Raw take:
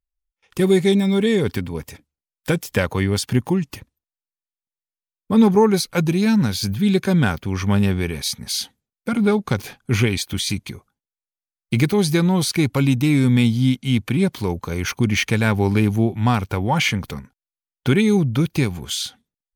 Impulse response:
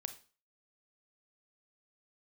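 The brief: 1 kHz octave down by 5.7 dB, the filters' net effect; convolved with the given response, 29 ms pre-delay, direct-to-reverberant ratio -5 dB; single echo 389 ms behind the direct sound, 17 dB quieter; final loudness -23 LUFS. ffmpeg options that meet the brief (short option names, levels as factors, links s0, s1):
-filter_complex "[0:a]equalizer=f=1000:t=o:g=-7.5,aecho=1:1:389:0.141,asplit=2[s0][s1];[1:a]atrim=start_sample=2205,adelay=29[s2];[s1][s2]afir=irnorm=-1:irlink=0,volume=2.37[s3];[s0][s3]amix=inputs=2:normalize=0,volume=0.355"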